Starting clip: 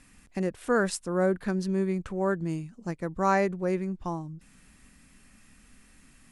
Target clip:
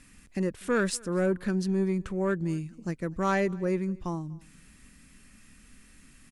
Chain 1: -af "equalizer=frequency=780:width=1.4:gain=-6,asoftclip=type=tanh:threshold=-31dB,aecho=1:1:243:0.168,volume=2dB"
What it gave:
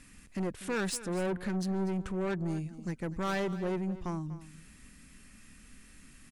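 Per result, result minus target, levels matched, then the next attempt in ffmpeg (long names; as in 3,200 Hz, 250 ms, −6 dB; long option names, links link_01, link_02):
soft clipping: distortion +11 dB; echo-to-direct +10 dB
-af "equalizer=frequency=780:width=1.4:gain=-6,asoftclip=type=tanh:threshold=-19dB,aecho=1:1:243:0.168,volume=2dB"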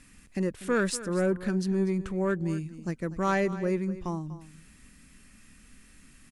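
echo-to-direct +10 dB
-af "equalizer=frequency=780:width=1.4:gain=-6,asoftclip=type=tanh:threshold=-19dB,aecho=1:1:243:0.0531,volume=2dB"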